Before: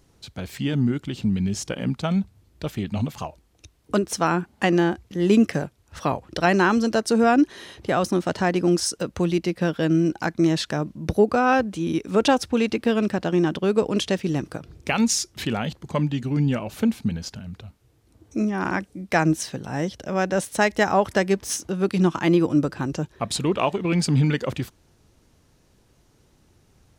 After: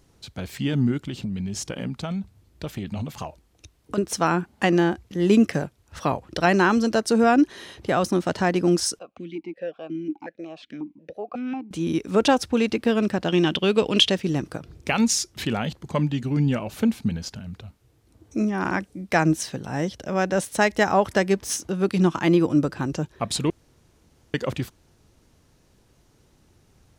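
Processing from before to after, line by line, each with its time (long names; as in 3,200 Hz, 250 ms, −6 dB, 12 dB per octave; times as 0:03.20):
0:01.06–0:03.98: downward compressor, threshold −25 dBFS
0:08.99–0:11.71: formant filter that steps through the vowels 5.5 Hz
0:13.28–0:14.10: parametric band 3,100 Hz +13.5 dB 0.89 octaves
0:23.50–0:24.34: fill with room tone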